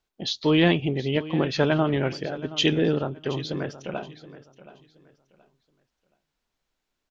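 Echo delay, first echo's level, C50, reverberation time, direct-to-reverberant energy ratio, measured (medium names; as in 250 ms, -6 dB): 724 ms, -16.5 dB, no reverb, no reverb, no reverb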